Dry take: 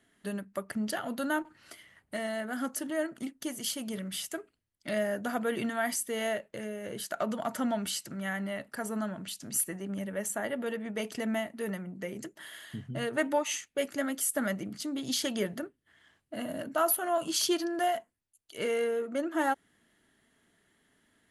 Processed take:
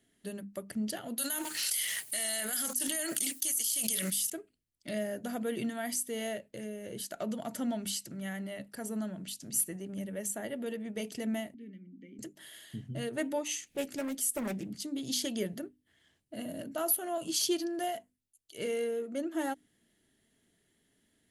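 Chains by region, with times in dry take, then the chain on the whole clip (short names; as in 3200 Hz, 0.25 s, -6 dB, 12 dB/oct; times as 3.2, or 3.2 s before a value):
1.18–4.3 differentiator + fast leveller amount 100%
11.54–12.19 vowel filter i + tilt -2 dB/oct
13.48–14.72 upward compressor, threshold -34 dBFS + Doppler distortion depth 0.41 ms
whole clip: bell 1200 Hz -12 dB 1.7 oct; notches 50/100/150/200/250/300 Hz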